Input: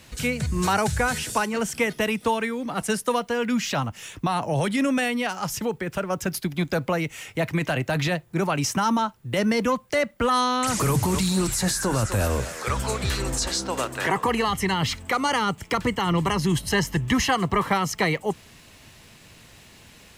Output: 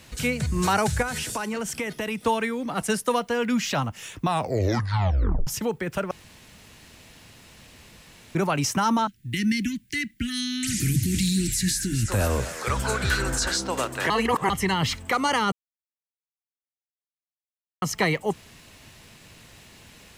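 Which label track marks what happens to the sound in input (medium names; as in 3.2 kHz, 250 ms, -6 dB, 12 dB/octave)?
1.020000	2.190000	compression, threshold -25 dBFS
4.260000	4.260000	tape stop 1.21 s
6.110000	8.350000	room tone
9.070000	12.080000	inverse Chebyshev band-stop 480–1200 Hz
12.850000	13.570000	small resonant body resonances 1.5 kHz, height 17 dB, ringing for 25 ms
14.100000	14.500000	reverse
15.520000	17.820000	mute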